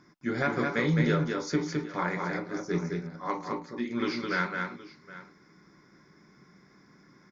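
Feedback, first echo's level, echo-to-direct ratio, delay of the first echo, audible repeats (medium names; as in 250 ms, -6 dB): no regular repeats, -4.0 dB, -4.0 dB, 212 ms, 2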